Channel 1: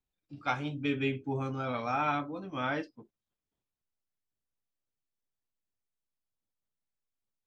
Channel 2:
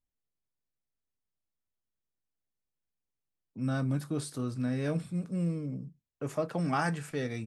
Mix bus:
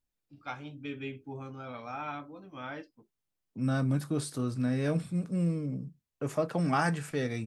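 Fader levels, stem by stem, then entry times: −8.0, +2.0 decibels; 0.00, 0.00 seconds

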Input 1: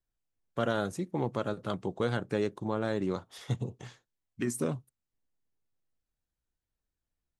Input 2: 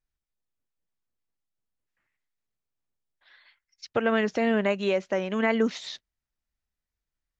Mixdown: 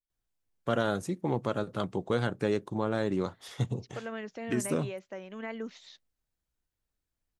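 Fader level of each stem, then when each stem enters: +1.5, −14.5 decibels; 0.10, 0.00 seconds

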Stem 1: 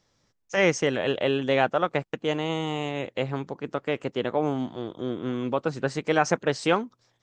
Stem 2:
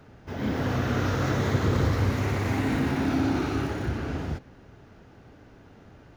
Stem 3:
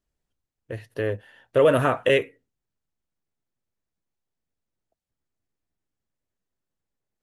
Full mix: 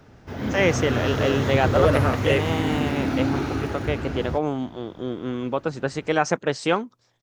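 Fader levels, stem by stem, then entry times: +1.0, +1.0, −3.0 decibels; 0.00, 0.00, 0.20 seconds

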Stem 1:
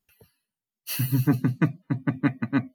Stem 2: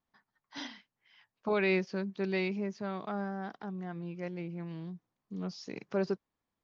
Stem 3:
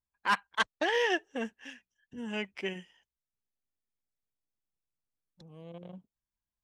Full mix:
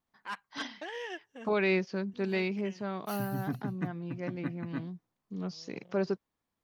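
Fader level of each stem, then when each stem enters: −14.0, +1.0, −12.0 decibels; 2.20, 0.00, 0.00 seconds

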